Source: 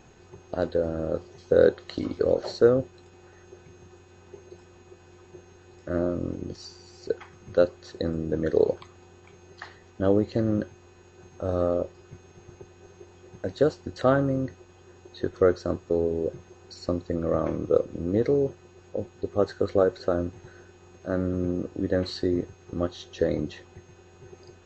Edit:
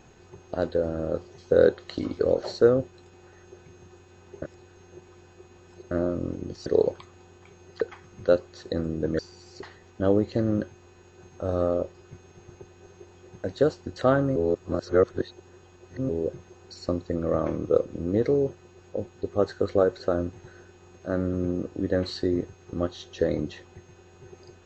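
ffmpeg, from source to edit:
-filter_complex "[0:a]asplit=9[s0][s1][s2][s3][s4][s5][s6][s7][s8];[s0]atrim=end=4.422[s9];[s1]atrim=start=4.418:end=5.912,asetpts=PTS-STARTPTS,areverse[s10];[s2]atrim=start=5.908:end=6.662[s11];[s3]atrim=start=8.478:end=9.632[s12];[s4]atrim=start=7.098:end=8.482[s13];[s5]atrim=start=6.658:end=7.102[s14];[s6]atrim=start=9.628:end=14.362[s15];[s7]atrim=start=14.358:end=16.092,asetpts=PTS-STARTPTS,areverse[s16];[s8]atrim=start=16.088[s17];[s9][s10]acrossfade=d=0.004:c1=hsin:c2=hsin[s18];[s18][s11]acrossfade=d=0.004:c1=hsin:c2=hsin[s19];[s19][s12]acrossfade=d=0.004:c1=hsin:c2=hsin[s20];[s20][s13]acrossfade=d=0.004:c1=hsin:c2=hsin[s21];[s21][s14]acrossfade=d=0.004:c1=hsin:c2=hsin[s22];[s22][s15]acrossfade=d=0.004:c1=hsin:c2=hsin[s23];[s23][s16]acrossfade=d=0.004:c1=hsin:c2=hsin[s24];[s24][s17]acrossfade=d=0.004:c1=hsin:c2=hsin"

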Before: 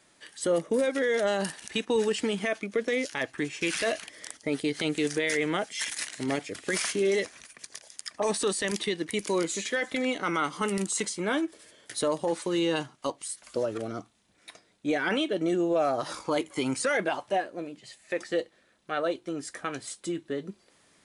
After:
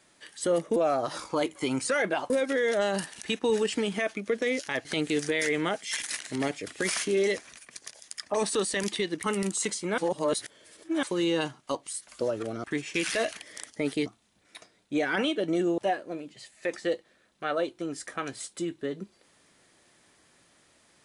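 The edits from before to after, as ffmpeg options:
-filter_complex "[0:a]asplit=10[s0][s1][s2][s3][s4][s5][s6][s7][s8][s9];[s0]atrim=end=0.762[s10];[s1]atrim=start=15.708:end=17.252[s11];[s2]atrim=start=0.758:end=3.312[s12];[s3]atrim=start=4.728:end=9.122[s13];[s4]atrim=start=10.588:end=11.332[s14];[s5]atrim=start=11.328:end=12.382,asetpts=PTS-STARTPTS,areverse[s15];[s6]atrim=start=12.378:end=13.992[s16];[s7]atrim=start=3.308:end=4.732[s17];[s8]atrim=start=13.988:end=15.712[s18];[s9]atrim=start=17.248[s19];[s10][s11]acrossfade=d=0.004:c1=hsin:c2=hsin[s20];[s20][s12]acrossfade=d=0.004:c1=hsin:c2=hsin[s21];[s21][s13]acrossfade=d=0.004:c1=hsin:c2=hsin[s22];[s22][s14]acrossfade=d=0.004:c1=hsin:c2=hsin[s23];[s23][s15]acrossfade=d=0.004:c1=hsin:c2=hsin[s24];[s24][s16]acrossfade=d=0.004:c1=hsin:c2=hsin[s25];[s25][s17]acrossfade=d=0.004:c1=hsin:c2=hsin[s26];[s26][s18]acrossfade=d=0.004:c1=hsin:c2=hsin[s27];[s27][s19]acrossfade=d=0.004:c1=hsin:c2=hsin"

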